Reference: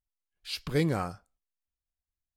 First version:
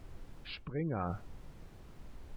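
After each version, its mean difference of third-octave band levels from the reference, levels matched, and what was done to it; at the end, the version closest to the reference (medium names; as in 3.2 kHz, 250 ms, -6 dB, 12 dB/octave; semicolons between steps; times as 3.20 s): 10.5 dB: distance through air 460 m; spectral gate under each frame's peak -30 dB strong; added noise brown -55 dBFS; reverse; compression 6:1, threshold -41 dBFS, peak gain reduction 17.5 dB; reverse; trim +7.5 dB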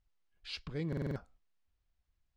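7.5 dB: bass shelf 160 Hz +5 dB; reverse; compression 16:1, threshold -42 dBFS, peak gain reduction 23 dB; reverse; distance through air 130 m; buffer glitch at 0.88 s, samples 2048, times 5; trim +9 dB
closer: second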